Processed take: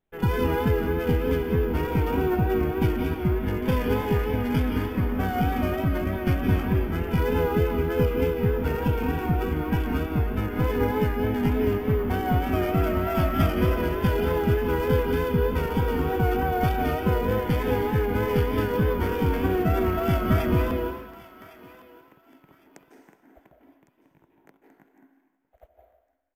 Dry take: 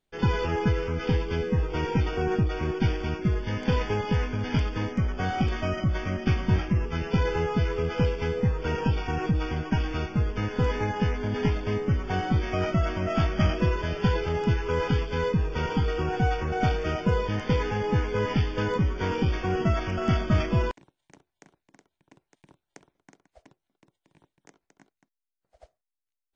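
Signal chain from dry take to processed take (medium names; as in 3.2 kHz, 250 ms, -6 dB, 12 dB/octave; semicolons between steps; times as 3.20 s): local Wiener filter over 9 samples; on a send at -2 dB: resonant low shelf 200 Hz -9.5 dB, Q 3 + reverberation RT60 1.1 s, pre-delay 144 ms; on the sum: vibrato 3.3 Hz 40 cents; careless resampling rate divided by 3×, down none, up hold; thinning echo 1107 ms, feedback 26%, high-pass 790 Hz, level -17 dB; resampled via 32 kHz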